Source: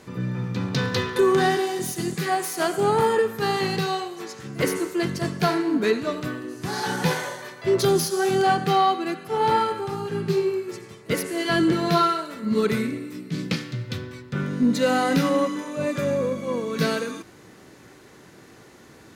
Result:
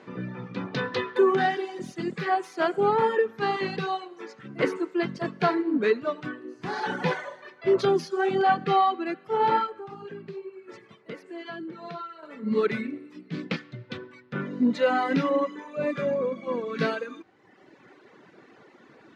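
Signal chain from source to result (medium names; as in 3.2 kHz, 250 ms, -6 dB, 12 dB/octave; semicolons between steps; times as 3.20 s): reverb removal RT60 1.2 s; 9.66–12.23 s: compression 5:1, threshold -36 dBFS, peak gain reduction 17 dB; band-pass 210–2800 Hz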